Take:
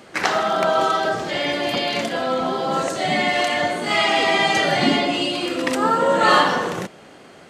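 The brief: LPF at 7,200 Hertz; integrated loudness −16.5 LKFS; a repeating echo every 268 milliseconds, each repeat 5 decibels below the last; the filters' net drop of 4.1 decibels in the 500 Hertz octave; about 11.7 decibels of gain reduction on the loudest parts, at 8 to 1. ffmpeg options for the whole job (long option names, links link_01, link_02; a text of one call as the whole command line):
ffmpeg -i in.wav -af "lowpass=7200,equalizer=frequency=500:width_type=o:gain=-5.5,acompressor=threshold=-24dB:ratio=8,aecho=1:1:268|536|804|1072|1340|1608|1876:0.562|0.315|0.176|0.0988|0.0553|0.031|0.0173,volume=9dB" out.wav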